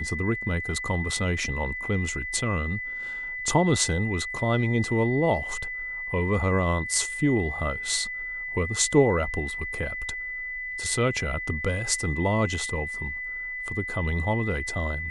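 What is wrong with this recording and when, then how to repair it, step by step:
whistle 2,000 Hz −31 dBFS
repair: notch filter 2,000 Hz, Q 30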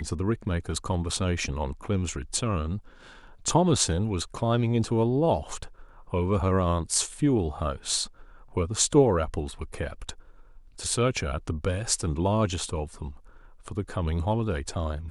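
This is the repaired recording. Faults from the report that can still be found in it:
none of them is left

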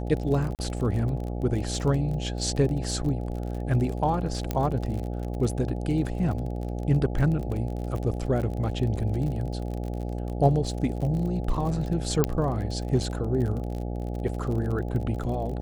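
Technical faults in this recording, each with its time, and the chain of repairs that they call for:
mains buzz 60 Hz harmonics 14 −31 dBFS
surface crackle 35 per second −32 dBFS
0:00.55–0:00.59: drop-out 38 ms
0:04.51: click −13 dBFS
0:12.24: click −8 dBFS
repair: click removal
hum removal 60 Hz, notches 14
repair the gap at 0:00.55, 38 ms

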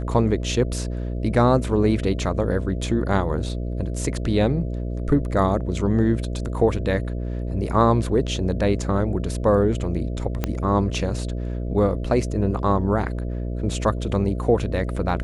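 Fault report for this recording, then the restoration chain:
mains buzz 60 Hz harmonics 11 −27 dBFS
0:10.44: click −9 dBFS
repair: click removal
hum removal 60 Hz, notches 11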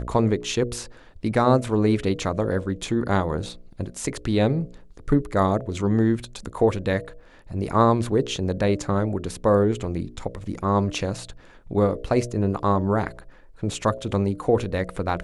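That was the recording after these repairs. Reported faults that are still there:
0:10.44: click

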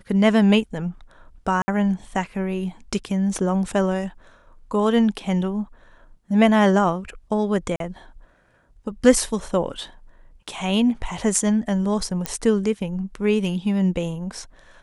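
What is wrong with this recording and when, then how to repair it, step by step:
0:01.62–0:01.68: drop-out 60 ms
0:07.76–0:07.80: drop-out 42 ms
0:12.26: click −8 dBFS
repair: click removal
repair the gap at 0:01.62, 60 ms
repair the gap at 0:07.76, 42 ms

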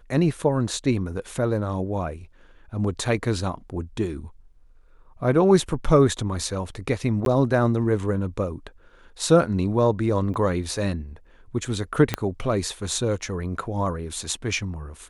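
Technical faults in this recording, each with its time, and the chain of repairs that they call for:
0:07.25–0:07.26: drop-out 12 ms
0:10.34: drop-out 3 ms
0:12.14: click −7 dBFS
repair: click removal
repair the gap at 0:07.25, 12 ms
repair the gap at 0:10.34, 3 ms

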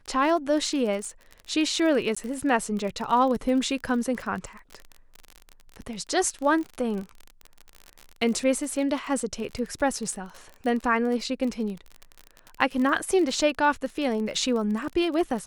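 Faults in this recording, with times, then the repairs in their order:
surface crackle 36 per second −31 dBFS
0:02.15–0:02.17: drop-out 15 ms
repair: click removal
repair the gap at 0:02.15, 15 ms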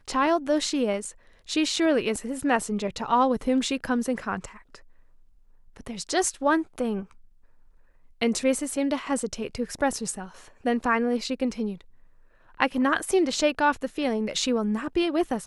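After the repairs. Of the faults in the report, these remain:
none of them is left

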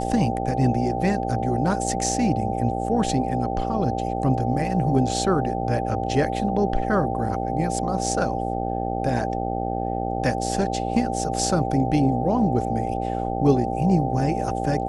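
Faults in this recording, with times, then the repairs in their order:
mains buzz 60 Hz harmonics 14 −28 dBFS
whistle 780 Hz −30 dBFS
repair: notch filter 780 Hz, Q 30
hum removal 60 Hz, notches 14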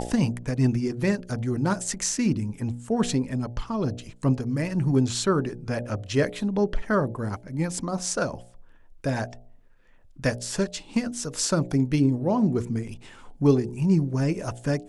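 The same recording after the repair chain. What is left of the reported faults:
none of them is left

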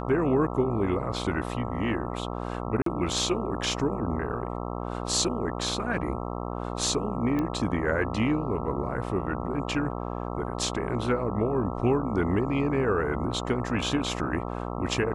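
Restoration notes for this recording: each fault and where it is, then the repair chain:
mains buzz 60 Hz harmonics 22 −33 dBFS
0:02.82–0:02.86: drop-out 43 ms
0:07.39: click −18 dBFS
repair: click removal
hum removal 60 Hz, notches 22
repair the gap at 0:02.82, 43 ms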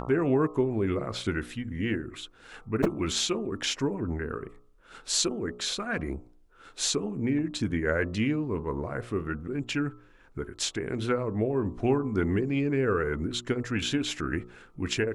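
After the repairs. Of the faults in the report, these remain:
0:07.39: click

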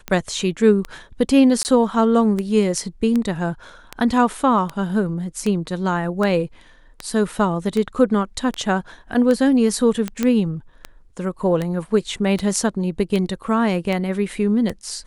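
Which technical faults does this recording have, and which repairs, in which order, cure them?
scratch tick 78 rpm −11 dBFS
0:01.63–0:01.65: drop-out 19 ms
0:10.23: click −7 dBFS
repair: click removal
repair the gap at 0:01.63, 19 ms

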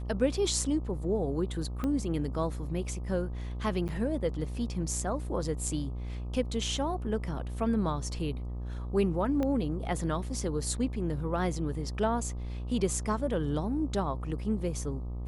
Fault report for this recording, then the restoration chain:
mains buzz 60 Hz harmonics 21 −36 dBFS
0:01.84: click −20 dBFS
0:03.88–0:03.89: drop-out 8.7 ms
0:09.43: click −20 dBFS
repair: click removal
hum removal 60 Hz, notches 21
repair the gap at 0:03.88, 8.7 ms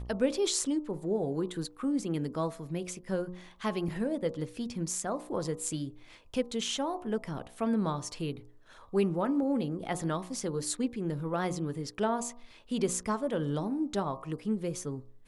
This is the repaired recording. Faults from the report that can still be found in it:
0:01.84: click
0:09.43: click

